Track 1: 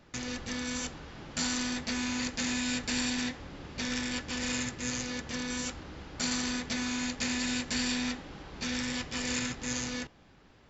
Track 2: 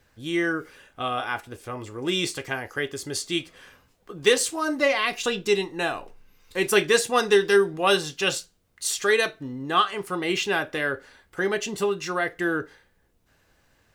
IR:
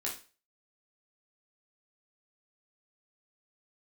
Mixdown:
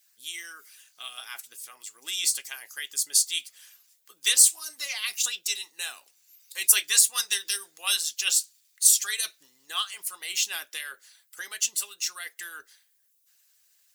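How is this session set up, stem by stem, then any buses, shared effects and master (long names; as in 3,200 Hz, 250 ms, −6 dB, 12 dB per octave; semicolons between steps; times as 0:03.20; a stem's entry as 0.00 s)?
−19.0 dB, 0.65 s, no send, gain into a clipping stage and back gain 35.5 dB; automatic ducking −9 dB, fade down 1.80 s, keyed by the second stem
+1.0 dB, 0.00 s, no send, no processing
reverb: not used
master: first difference; harmonic and percussive parts rebalanced harmonic −12 dB; high-shelf EQ 2,500 Hz +11.5 dB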